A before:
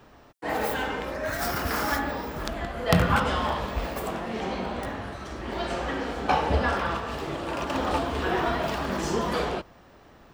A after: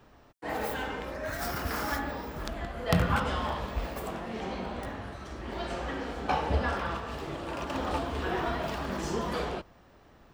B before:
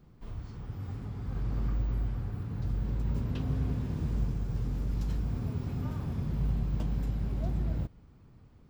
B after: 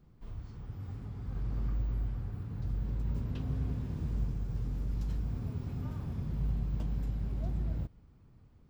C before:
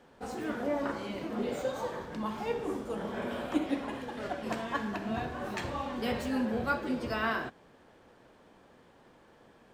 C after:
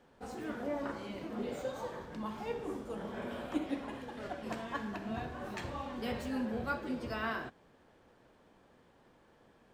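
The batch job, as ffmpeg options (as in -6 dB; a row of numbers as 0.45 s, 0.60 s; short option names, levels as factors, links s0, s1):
-af "lowshelf=f=120:g=4,volume=0.531"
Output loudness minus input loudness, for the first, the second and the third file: -5.0 LU, -3.0 LU, -5.0 LU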